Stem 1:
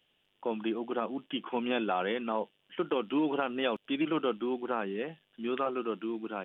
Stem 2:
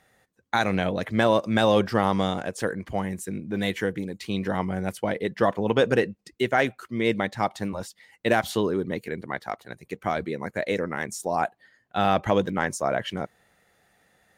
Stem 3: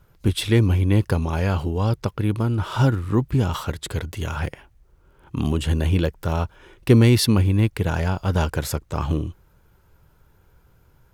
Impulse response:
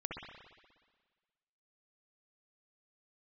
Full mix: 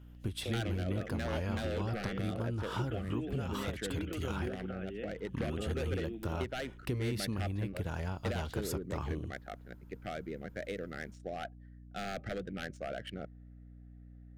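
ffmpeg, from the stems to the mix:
-filter_complex "[0:a]alimiter=level_in=1dB:limit=-24dB:level=0:latency=1,volume=-1dB,volume=-5.5dB[link_01];[1:a]aeval=exprs='0.168*(abs(mod(val(0)/0.168+3,4)-2)-1)':channel_layout=same,adynamicsmooth=sensitivity=4:basefreq=1400,volume=-10dB[link_02];[2:a]acompressor=threshold=-24dB:ratio=6,volume=-9.5dB[link_03];[link_01][link_02]amix=inputs=2:normalize=0,asuperstop=centerf=970:order=4:qfactor=1.7,acompressor=threshold=-35dB:ratio=6,volume=0dB[link_04];[link_03][link_04]amix=inputs=2:normalize=0,aeval=exprs='val(0)+0.00282*(sin(2*PI*60*n/s)+sin(2*PI*2*60*n/s)/2+sin(2*PI*3*60*n/s)/3+sin(2*PI*4*60*n/s)/4+sin(2*PI*5*60*n/s)/5)':channel_layout=same"

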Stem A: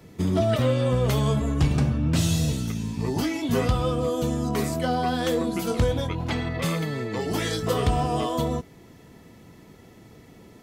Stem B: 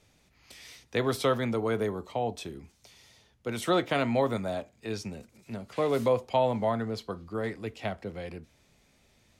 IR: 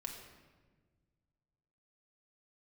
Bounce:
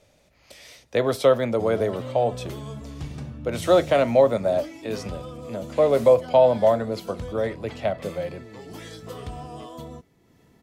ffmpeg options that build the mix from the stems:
-filter_complex "[0:a]acompressor=mode=upward:threshold=-37dB:ratio=2.5,adelay=1400,volume=-13dB[link_01];[1:a]equalizer=frequency=580:width_type=o:width=0.47:gain=13,volume=2dB[link_02];[link_01][link_02]amix=inputs=2:normalize=0"

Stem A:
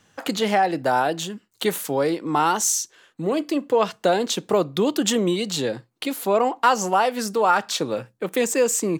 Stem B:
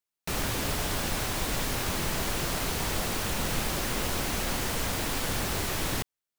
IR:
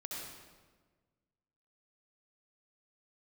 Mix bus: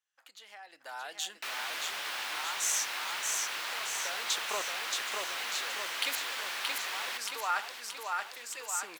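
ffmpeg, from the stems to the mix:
-filter_complex "[0:a]acompressor=threshold=-23dB:ratio=2.5,aeval=exprs='val(0)*pow(10,-31*if(lt(mod(-0.65*n/s,1),2*abs(-0.65)/1000),1-mod(-0.65*n/s,1)/(2*abs(-0.65)/1000),(mod(-0.65*n/s,1)-2*abs(-0.65)/1000)/(1-2*abs(-0.65)/1000))/20)':channel_layout=same,volume=2dB,asplit=2[link_01][link_02];[link_02]volume=-3dB[link_03];[1:a]acrossover=split=4500[link_04][link_05];[link_05]acompressor=threshold=-47dB:ratio=4:attack=1:release=60[link_06];[link_04][link_06]amix=inputs=2:normalize=0,adelay=1150,volume=0dB,asplit=2[link_07][link_08];[link_08]volume=-9.5dB[link_09];[link_03][link_09]amix=inputs=2:normalize=0,aecho=0:1:626|1252|1878|2504|3130|3756|4382|5008|5634:1|0.57|0.325|0.185|0.106|0.0602|0.0343|0.0195|0.0111[link_10];[link_01][link_07][link_10]amix=inputs=3:normalize=0,highpass=1300"

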